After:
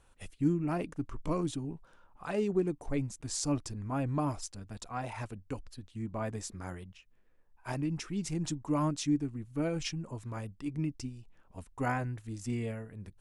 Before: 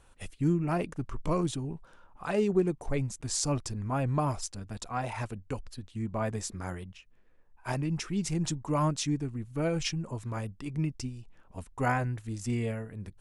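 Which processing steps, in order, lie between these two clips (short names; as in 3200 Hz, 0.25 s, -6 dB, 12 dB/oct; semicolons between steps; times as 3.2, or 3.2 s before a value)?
dynamic EQ 290 Hz, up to +8 dB, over -50 dBFS, Q 5.7; gain -4.5 dB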